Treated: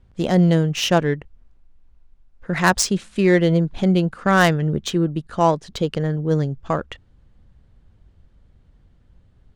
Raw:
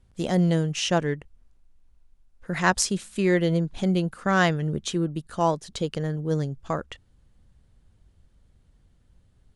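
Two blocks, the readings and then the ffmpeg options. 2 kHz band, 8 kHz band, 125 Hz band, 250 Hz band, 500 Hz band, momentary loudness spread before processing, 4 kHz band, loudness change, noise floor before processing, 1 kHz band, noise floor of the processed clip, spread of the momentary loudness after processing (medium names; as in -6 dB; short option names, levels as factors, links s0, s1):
+5.0 dB, +3.5 dB, +6.0 dB, +6.0 dB, +6.0 dB, 9 LU, +5.0 dB, +5.5 dB, -62 dBFS, +5.5 dB, -56 dBFS, 9 LU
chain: -af "adynamicsmooth=sensitivity=1.5:basefreq=3500,crystalizer=i=1:c=0,apsyclip=3.98,volume=0.501"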